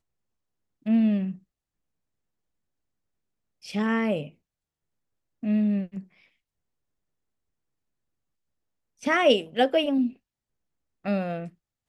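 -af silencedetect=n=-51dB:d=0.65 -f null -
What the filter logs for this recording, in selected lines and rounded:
silence_start: 0.00
silence_end: 0.86 | silence_duration: 0.86
silence_start: 1.39
silence_end: 3.62 | silence_duration: 2.24
silence_start: 4.31
silence_end: 5.43 | silence_duration: 1.12
silence_start: 6.26
silence_end: 8.99 | silence_duration: 2.73
silence_start: 10.16
silence_end: 11.05 | silence_duration: 0.88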